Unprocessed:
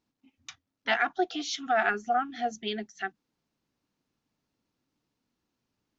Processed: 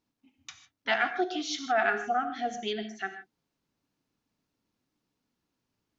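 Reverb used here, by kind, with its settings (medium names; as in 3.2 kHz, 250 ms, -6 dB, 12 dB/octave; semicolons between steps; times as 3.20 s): gated-style reverb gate 180 ms flat, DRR 8 dB; trim -1 dB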